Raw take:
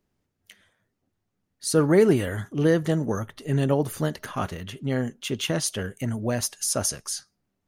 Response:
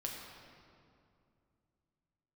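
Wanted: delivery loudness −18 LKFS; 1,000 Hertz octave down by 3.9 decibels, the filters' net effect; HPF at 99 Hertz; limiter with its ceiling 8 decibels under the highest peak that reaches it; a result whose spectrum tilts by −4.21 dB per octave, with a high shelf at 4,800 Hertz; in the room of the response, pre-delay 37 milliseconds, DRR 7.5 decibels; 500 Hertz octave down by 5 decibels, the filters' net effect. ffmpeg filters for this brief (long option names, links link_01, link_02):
-filter_complex "[0:a]highpass=99,equalizer=frequency=500:width_type=o:gain=-5.5,equalizer=frequency=1000:width_type=o:gain=-4,highshelf=frequency=4800:gain=8,alimiter=limit=-14.5dB:level=0:latency=1,asplit=2[link_01][link_02];[1:a]atrim=start_sample=2205,adelay=37[link_03];[link_02][link_03]afir=irnorm=-1:irlink=0,volume=-7.5dB[link_04];[link_01][link_04]amix=inputs=2:normalize=0,volume=8.5dB"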